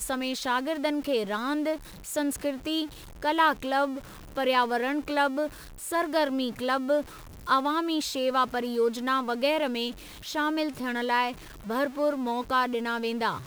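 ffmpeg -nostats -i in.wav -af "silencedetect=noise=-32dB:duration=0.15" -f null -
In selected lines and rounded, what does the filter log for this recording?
silence_start: 1.76
silence_end: 2.08 | silence_duration: 0.31
silence_start: 2.86
silence_end: 3.22 | silence_duration: 0.37
silence_start: 3.99
silence_end: 4.36 | silence_duration: 0.38
silence_start: 5.47
silence_end: 5.83 | silence_duration: 0.36
silence_start: 7.01
silence_end: 7.47 | silence_duration: 0.46
silence_start: 9.91
silence_end: 10.27 | silence_duration: 0.36
silence_start: 11.32
silence_end: 11.68 | silence_duration: 0.36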